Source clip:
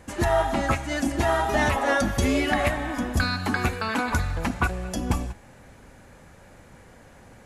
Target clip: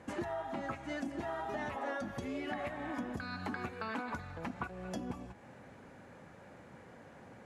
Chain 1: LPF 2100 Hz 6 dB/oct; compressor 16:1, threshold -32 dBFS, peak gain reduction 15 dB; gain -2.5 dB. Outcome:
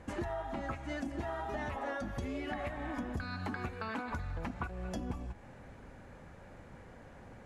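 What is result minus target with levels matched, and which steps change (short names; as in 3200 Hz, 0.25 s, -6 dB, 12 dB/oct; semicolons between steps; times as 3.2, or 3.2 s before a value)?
125 Hz band +5.0 dB
add after compressor: HPF 130 Hz 12 dB/oct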